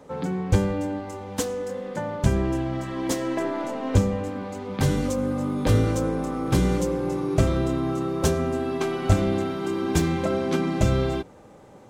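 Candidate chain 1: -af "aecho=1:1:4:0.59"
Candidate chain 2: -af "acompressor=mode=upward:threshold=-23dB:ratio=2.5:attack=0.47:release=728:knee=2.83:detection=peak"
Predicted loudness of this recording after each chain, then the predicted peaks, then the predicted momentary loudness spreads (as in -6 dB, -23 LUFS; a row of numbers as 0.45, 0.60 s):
-24.5, -25.0 LUFS; -5.5, -5.5 dBFS; 7, 8 LU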